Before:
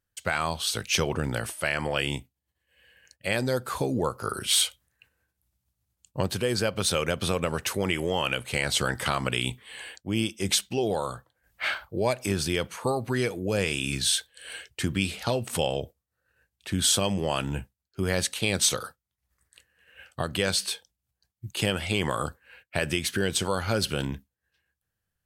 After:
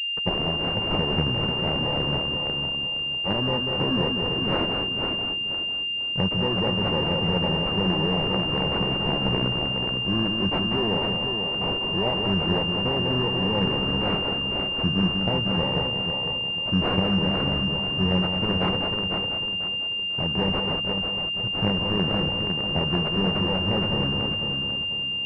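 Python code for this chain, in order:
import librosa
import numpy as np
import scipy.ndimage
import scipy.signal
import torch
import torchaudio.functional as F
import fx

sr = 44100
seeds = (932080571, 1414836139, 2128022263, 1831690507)

p1 = fx.bit_reversed(x, sr, seeds[0], block=32)
p2 = p1 + 10.0 ** (-7.5 / 20.0) * np.pad(p1, (int(192 * sr / 1000.0), 0))[:len(p1)]
p3 = fx.quant_companded(p2, sr, bits=2)
p4 = p2 + (p3 * 10.0 ** (-6.0 / 20.0))
p5 = fx.peak_eq(p4, sr, hz=180.0, db=9.0, octaves=0.29)
p6 = p5 + fx.echo_feedback(p5, sr, ms=495, feedback_pct=35, wet_db=-6, dry=0)
p7 = fx.pwm(p6, sr, carrier_hz=2800.0)
y = p7 * 10.0 ** (-3.0 / 20.0)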